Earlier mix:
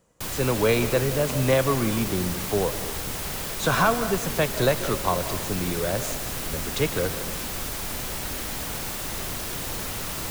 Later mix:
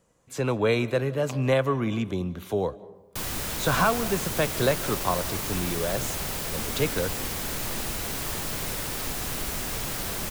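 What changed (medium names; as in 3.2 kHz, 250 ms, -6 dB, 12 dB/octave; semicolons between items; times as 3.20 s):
speech: send -8.0 dB; background: entry +2.95 s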